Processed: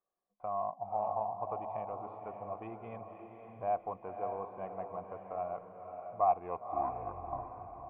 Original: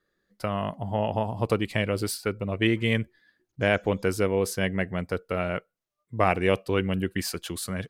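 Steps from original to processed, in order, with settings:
turntable brake at the end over 1.51 s
in parallel at −3.5 dB: gain into a clipping stage and back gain 25.5 dB
on the sum: formant resonators in series a
feedback delay with all-pass diffusion 551 ms, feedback 42%, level −6 dB

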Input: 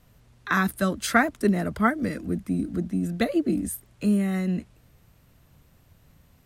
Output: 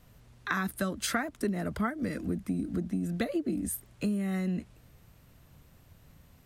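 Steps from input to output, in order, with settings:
downward compressor 5 to 1, threshold −28 dBFS, peak gain reduction 13 dB

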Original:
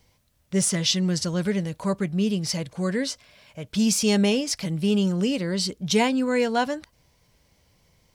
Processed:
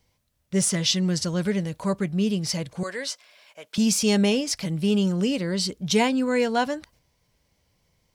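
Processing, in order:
noise gate −54 dBFS, range −6 dB
0:02.83–0:03.78: high-pass filter 590 Hz 12 dB per octave

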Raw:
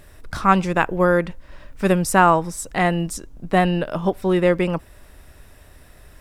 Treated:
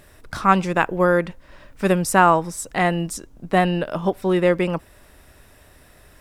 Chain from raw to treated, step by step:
low-shelf EQ 83 Hz −8 dB

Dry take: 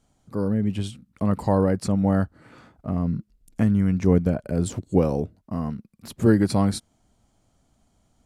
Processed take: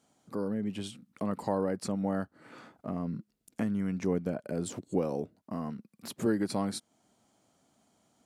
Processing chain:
high-pass filter 210 Hz 12 dB per octave
downward compressor 1.5 to 1, threshold −40 dBFS, peak gain reduction 9.5 dB

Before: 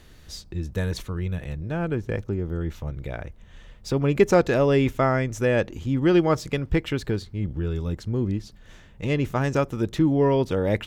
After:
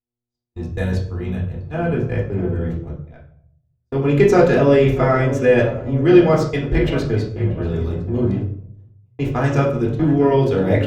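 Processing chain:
0:08.36–0:09.19: downward compressor 5 to 1, threshold −38 dBFS, peak gain reduction 16.5 dB
hum with harmonics 120 Hz, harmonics 11, −37 dBFS −8 dB per octave
0:03.06–0:03.96: low-shelf EQ 270 Hz −4 dB
tape delay 637 ms, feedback 69%, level −11 dB, low-pass 1,600 Hz
noise gate −27 dBFS, range −58 dB
0:05.63–0:06.05: high-shelf EQ 2,100 Hz −11.5 dB
convolution reverb RT60 0.65 s, pre-delay 3 ms, DRR −3.5 dB
level −1.5 dB

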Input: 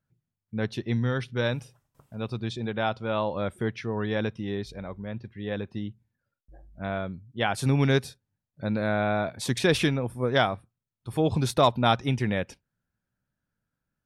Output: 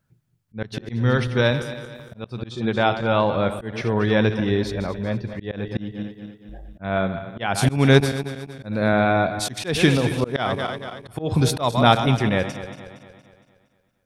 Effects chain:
feedback delay that plays each chunk backwards 116 ms, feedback 67%, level −11 dB
volume swells 210 ms
speech leveller within 4 dB 2 s
level +7 dB

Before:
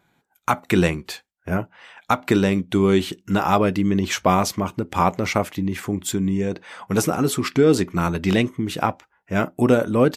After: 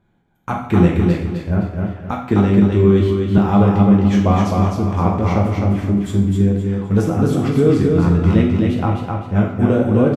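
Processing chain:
parametric band 3,200 Hz +3.5 dB 0.2 octaves
convolution reverb RT60 0.70 s, pre-delay 5 ms, DRR 0 dB
flanger 0.32 Hz, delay 8.8 ms, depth 6 ms, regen −77%
spectral tilt −3.5 dB per octave
repeating echo 258 ms, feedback 35%, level −3.5 dB
0:02.11–0:03.38: multiband upward and downward expander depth 40%
level −1 dB

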